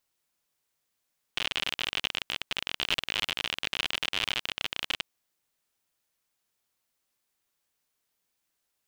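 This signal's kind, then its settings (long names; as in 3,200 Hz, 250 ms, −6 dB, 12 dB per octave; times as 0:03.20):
Geiger counter clicks 57 per second −12.5 dBFS 3.64 s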